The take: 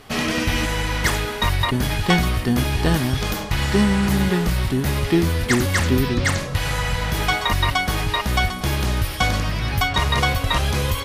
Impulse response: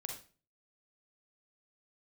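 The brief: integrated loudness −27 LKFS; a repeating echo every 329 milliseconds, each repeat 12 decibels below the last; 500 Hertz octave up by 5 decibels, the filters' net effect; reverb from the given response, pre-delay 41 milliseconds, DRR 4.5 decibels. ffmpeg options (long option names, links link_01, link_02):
-filter_complex "[0:a]equalizer=frequency=500:width_type=o:gain=6.5,aecho=1:1:329|658|987:0.251|0.0628|0.0157,asplit=2[link_01][link_02];[1:a]atrim=start_sample=2205,adelay=41[link_03];[link_02][link_03]afir=irnorm=-1:irlink=0,volume=-3dB[link_04];[link_01][link_04]amix=inputs=2:normalize=0,volume=-9dB"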